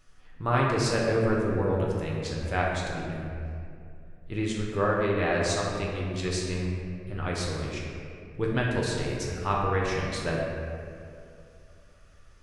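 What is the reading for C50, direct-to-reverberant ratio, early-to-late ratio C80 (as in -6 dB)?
0.0 dB, -3.5 dB, 1.5 dB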